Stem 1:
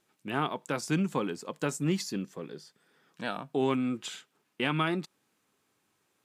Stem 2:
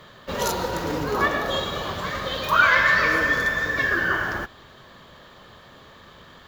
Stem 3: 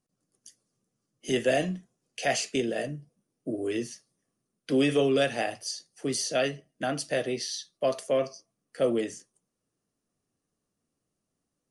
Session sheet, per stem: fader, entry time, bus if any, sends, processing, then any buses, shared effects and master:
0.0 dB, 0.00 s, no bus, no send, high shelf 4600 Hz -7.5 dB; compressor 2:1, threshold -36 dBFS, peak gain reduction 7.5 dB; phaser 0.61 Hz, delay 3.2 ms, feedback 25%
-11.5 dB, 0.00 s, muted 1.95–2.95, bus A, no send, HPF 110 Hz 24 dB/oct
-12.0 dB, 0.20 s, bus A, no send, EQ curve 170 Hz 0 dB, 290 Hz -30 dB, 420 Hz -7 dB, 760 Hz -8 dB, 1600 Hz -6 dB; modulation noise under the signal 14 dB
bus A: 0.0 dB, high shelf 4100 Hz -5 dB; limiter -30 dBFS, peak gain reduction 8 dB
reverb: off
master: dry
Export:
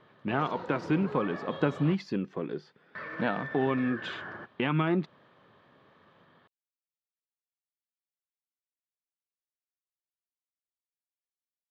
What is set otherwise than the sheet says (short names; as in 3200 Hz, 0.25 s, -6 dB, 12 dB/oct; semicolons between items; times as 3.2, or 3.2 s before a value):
stem 1 0.0 dB -> +8.5 dB; stem 3: muted; master: extra air absorption 280 m